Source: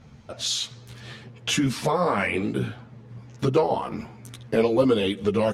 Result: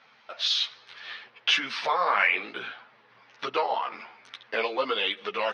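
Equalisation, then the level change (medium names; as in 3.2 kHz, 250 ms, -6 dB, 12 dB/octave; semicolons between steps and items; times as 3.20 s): Savitzky-Golay filter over 15 samples; high-pass 1.2 kHz 12 dB/octave; distance through air 130 m; +7.0 dB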